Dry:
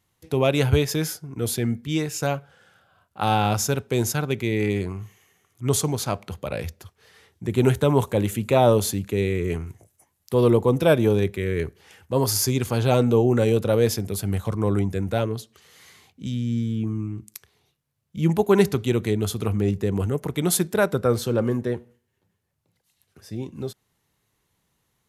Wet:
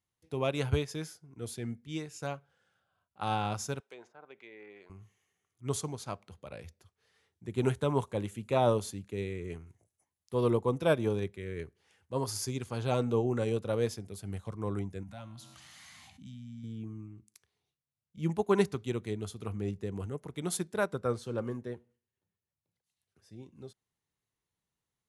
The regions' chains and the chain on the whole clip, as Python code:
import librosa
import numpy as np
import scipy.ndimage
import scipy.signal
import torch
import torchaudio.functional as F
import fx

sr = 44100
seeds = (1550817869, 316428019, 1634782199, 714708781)

y = fx.chain(x, sr, fx.highpass(hz=650.0, slope=12),
    fx.env_lowpass_down(base_hz=870.0, full_db=-25.0), at=(3.8, 4.9))
y = fx.chain(y, sr, fx.cheby1_bandstop(low_hz=260.0, high_hz=660.0, order=2),
    fx.comb_fb(f0_hz=65.0, decay_s=0.78, harmonics='all', damping=0.0, mix_pct=50),
    fx.env_flatten(amount_pct=70), at=(15.03, 16.64))
y = scipy.signal.sosfilt(scipy.signal.ellip(4, 1.0, 40, 11000.0, 'lowpass', fs=sr, output='sos'), y)
y = fx.dynamic_eq(y, sr, hz=1100.0, q=2.5, threshold_db=-39.0, ratio=4.0, max_db=4)
y = fx.upward_expand(y, sr, threshold_db=-32.0, expansion=1.5)
y = y * 10.0 ** (-7.5 / 20.0)